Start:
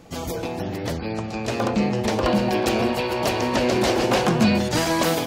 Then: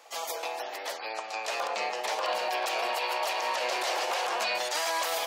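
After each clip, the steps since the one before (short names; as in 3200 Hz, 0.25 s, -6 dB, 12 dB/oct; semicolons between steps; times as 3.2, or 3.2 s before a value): HPF 640 Hz 24 dB/oct; notch 1500 Hz, Q 29; limiter -20.5 dBFS, peak gain reduction 10.5 dB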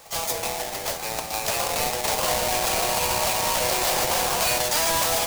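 half-waves squared off; tone controls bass +10 dB, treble +9 dB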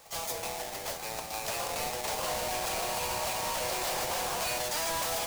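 soft clip -19.5 dBFS, distortion -14 dB; gain -7 dB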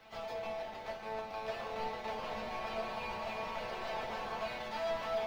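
in parallel at -10 dB: requantised 6-bit, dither triangular; on the sum: air absorption 330 m; resonator 220 Hz, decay 0.17 s, harmonics all, mix 90%; gain +4 dB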